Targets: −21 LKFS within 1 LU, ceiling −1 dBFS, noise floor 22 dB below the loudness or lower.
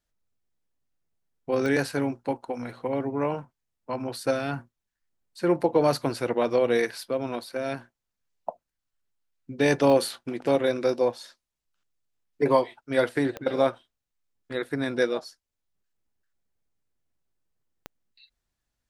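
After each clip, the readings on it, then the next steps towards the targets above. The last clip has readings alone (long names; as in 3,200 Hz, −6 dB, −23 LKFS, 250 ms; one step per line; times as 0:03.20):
number of clicks 4; integrated loudness −26.5 LKFS; sample peak −7.5 dBFS; target loudness −21.0 LKFS
→ click removal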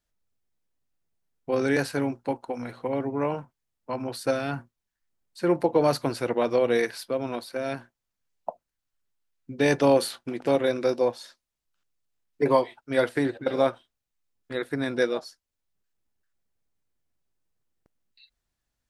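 number of clicks 0; integrated loudness −26.5 LKFS; sample peak −7.5 dBFS; target loudness −21.0 LKFS
→ level +5.5 dB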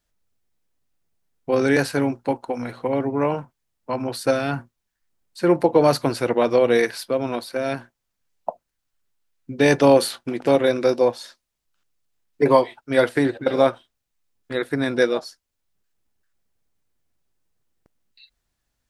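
integrated loudness −21.0 LKFS; sample peak −2.0 dBFS; background noise floor −79 dBFS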